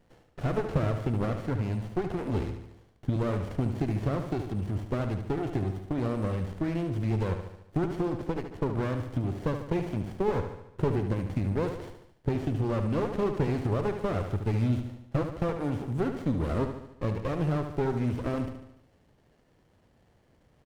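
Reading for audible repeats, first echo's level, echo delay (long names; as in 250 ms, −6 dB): 6, −8.0 dB, 73 ms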